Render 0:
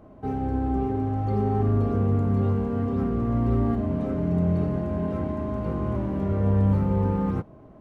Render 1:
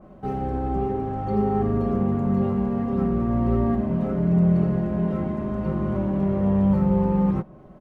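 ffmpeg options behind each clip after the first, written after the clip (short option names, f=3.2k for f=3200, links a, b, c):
-af "bandreject=f=370:w=12,aecho=1:1:5.4:0.71,adynamicequalizer=threshold=0.00282:dfrequency=2700:dqfactor=0.7:tfrequency=2700:tqfactor=0.7:attack=5:release=100:ratio=0.375:range=2.5:mode=cutabove:tftype=highshelf,volume=1.5dB"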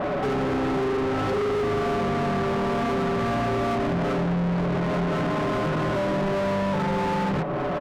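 -filter_complex "[0:a]aecho=1:1:7:0.82,acompressor=threshold=-31dB:ratio=4,asplit=2[a][b];[b]highpass=f=720:p=1,volume=38dB,asoftclip=type=tanh:threshold=-22.5dB[c];[a][c]amix=inputs=2:normalize=0,lowpass=f=1.8k:p=1,volume=-6dB,volume=4dB"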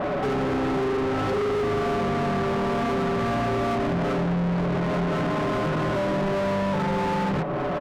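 -af anull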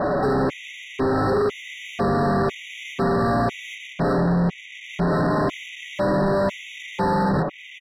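-af "afftfilt=real='re*gt(sin(2*PI*1*pts/sr)*(1-2*mod(floor(b*sr/1024/1900),2)),0)':imag='im*gt(sin(2*PI*1*pts/sr)*(1-2*mod(floor(b*sr/1024/1900),2)),0)':win_size=1024:overlap=0.75,volume=4.5dB"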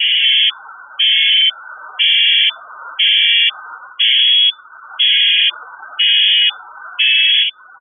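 -af "acontrast=79,lowpass=f=3k:t=q:w=0.5098,lowpass=f=3k:t=q:w=0.6013,lowpass=f=3k:t=q:w=0.9,lowpass=f=3k:t=q:w=2.563,afreqshift=-3500,afftdn=nr=25:nf=-25,volume=2dB"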